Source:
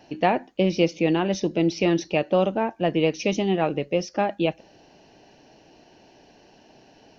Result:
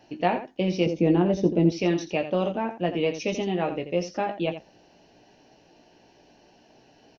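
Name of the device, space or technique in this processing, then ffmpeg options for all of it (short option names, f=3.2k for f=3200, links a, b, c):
slapback doubling: -filter_complex "[0:a]asplit=3[a][b][c];[b]adelay=17,volume=-6.5dB[d];[c]adelay=85,volume=-10.5dB[e];[a][d][e]amix=inputs=3:normalize=0,asettb=1/sr,asplit=3[f][g][h];[f]atrim=end=0.864[i];[g]atrim=start=0.86:end=1.72,asetpts=PTS-STARTPTS,afade=t=in:d=0.004:c=qsin,afade=t=out:st=0.856:d=0.004:c=qsin,tiltshelf=f=930:g=8[j];[h]atrim=start=1.716[k];[i][j]acrossfade=d=0.004:c1=hsin:c2=qsin[l];[l][k]acrossfade=d=0.004:c1=qsin:c2=hsin,volume=-4.5dB"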